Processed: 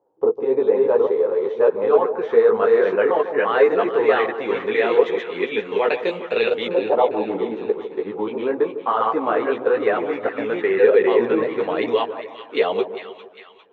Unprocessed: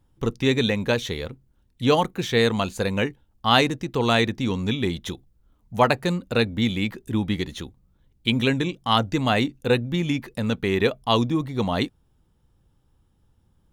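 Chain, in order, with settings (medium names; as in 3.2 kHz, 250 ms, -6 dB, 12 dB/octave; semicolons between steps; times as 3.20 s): chunks repeated in reverse 642 ms, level -1 dB; in parallel at +2.5 dB: compressor with a negative ratio -22 dBFS, ratio -0.5; on the sum: resonant high-pass 440 Hz, resonance Q 4.9; LFO low-pass saw up 0.15 Hz 810–3000 Hz; chorus voices 4, 1 Hz, delay 14 ms, depth 4.6 ms; on a send: two-band feedback delay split 1.1 kHz, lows 151 ms, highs 402 ms, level -11 dB; on the sum: trim -7 dB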